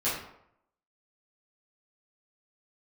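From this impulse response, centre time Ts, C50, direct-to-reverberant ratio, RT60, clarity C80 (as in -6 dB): 49 ms, 2.5 dB, -12.0 dB, 0.75 s, 6.5 dB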